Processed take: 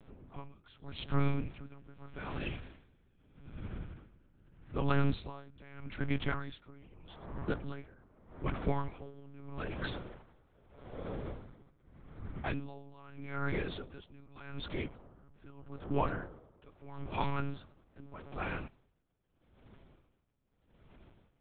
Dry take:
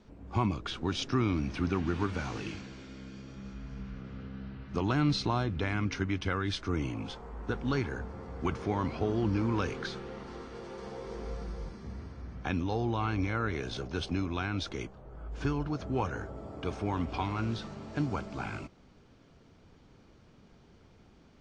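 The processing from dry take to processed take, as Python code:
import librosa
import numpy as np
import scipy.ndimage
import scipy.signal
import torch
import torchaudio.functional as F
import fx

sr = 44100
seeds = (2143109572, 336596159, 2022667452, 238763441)

y = x + 10.0 ** (-23.5 / 20.0) * np.pad(x, (int(109 * sr / 1000.0), 0))[:len(x)]
y = fx.lpc_monotone(y, sr, seeds[0], pitch_hz=140.0, order=8)
y = y * 10.0 ** (-24 * (0.5 - 0.5 * np.cos(2.0 * np.pi * 0.81 * np.arange(len(y)) / sr)) / 20.0)
y = y * 10.0 ** (1.0 / 20.0)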